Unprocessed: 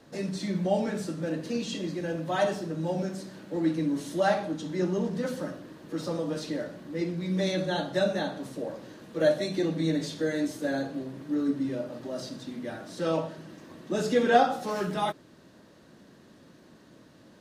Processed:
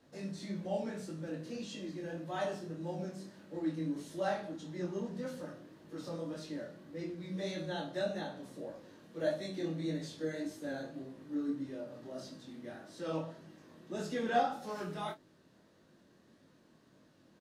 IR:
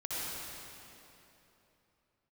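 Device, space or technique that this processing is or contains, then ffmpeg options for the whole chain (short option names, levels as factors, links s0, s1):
double-tracked vocal: -filter_complex "[0:a]asplit=2[s0][s1];[s1]adelay=31,volume=0.299[s2];[s0][s2]amix=inputs=2:normalize=0,flanger=delay=19:depth=6.4:speed=1.7,volume=0.422"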